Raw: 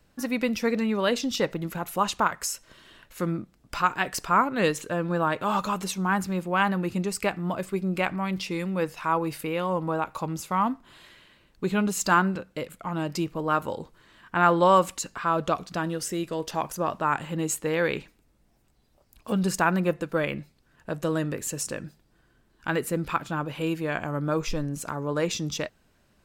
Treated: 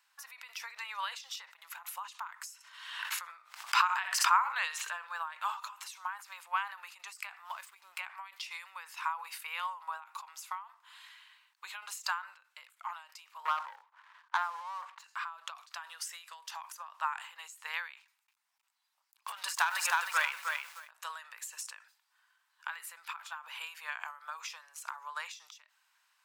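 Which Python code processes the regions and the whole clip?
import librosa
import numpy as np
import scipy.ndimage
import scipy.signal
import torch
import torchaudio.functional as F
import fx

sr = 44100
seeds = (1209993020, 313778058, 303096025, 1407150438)

y = fx.chain(x, sr, fx.high_shelf(hz=7300.0, db=-7.0),
    fx.echo_feedback(ms=64, feedback_pct=16, wet_db=-14.0),
    fx.pre_swell(db_per_s=51.0), at=(2.54, 5.07))
y = fx.chain(y, sr, fx.backlash(play_db=-43.5),
    fx.high_shelf(hz=5900.0, db=5.0), at=(7.45, 8.0))
y = fx.chain(y, sr, fx.lowpass(hz=1100.0, slope=12),
    fx.over_compress(threshold_db=-28.0, ratio=-0.5),
    fx.leveller(passes=2), at=(13.45, 15.04))
y = fx.chain(y, sr, fx.leveller(passes=2),
    fx.echo_crushed(ms=311, feedback_pct=35, bits=7, wet_db=-5), at=(17.97, 20.91))
y = scipy.signal.sosfilt(scipy.signal.ellip(4, 1.0, 70, 930.0, 'highpass', fs=sr, output='sos'), y)
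y = fx.end_taper(y, sr, db_per_s=120.0)
y = y * 10.0 ** (-1.5 / 20.0)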